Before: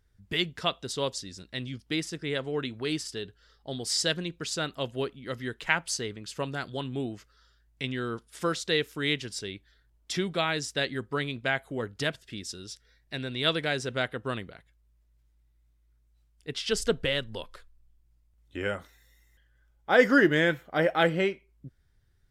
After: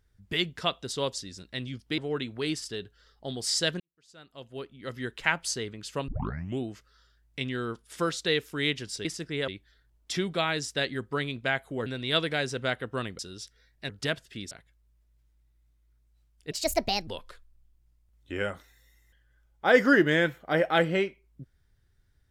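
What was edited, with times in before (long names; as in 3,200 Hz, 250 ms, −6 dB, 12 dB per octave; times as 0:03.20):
0:01.98–0:02.41: move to 0:09.48
0:04.23–0:05.47: fade in quadratic
0:06.51: tape start 0.51 s
0:11.86–0:12.48: swap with 0:13.18–0:14.51
0:16.51–0:17.32: play speed 144%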